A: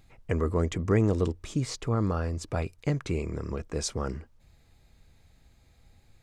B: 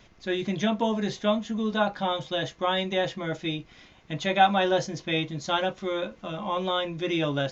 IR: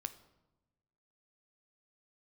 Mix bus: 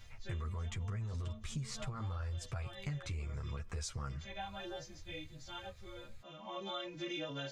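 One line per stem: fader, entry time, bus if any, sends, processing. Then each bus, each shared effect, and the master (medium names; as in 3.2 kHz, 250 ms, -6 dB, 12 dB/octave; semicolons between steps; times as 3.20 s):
+3.0 dB, 0.00 s, send -6 dB, FFT filter 120 Hz 0 dB, 310 Hz -18 dB, 1.3 kHz -2 dB; peak limiter -25.5 dBFS, peak gain reduction 9 dB
-6.0 dB, 0.00 s, no send, partials quantised in pitch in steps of 2 st; auto duck -13 dB, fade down 0.45 s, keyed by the first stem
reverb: on, RT60 1.0 s, pre-delay 9 ms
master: chorus voices 4, 0.76 Hz, delay 11 ms, depth 3.3 ms; compression 4:1, threshold -39 dBFS, peak gain reduction 12.5 dB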